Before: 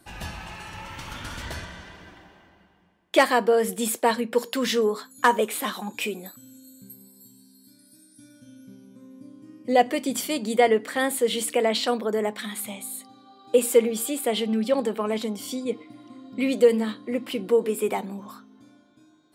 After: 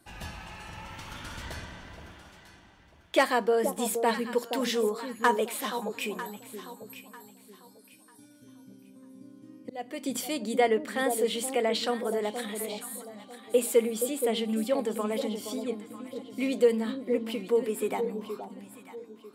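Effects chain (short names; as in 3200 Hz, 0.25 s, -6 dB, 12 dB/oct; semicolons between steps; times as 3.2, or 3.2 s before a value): 9.62–10.03 auto swell 0.515 s; echo with dull and thin repeats by turns 0.473 s, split 900 Hz, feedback 52%, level -7 dB; gain -5 dB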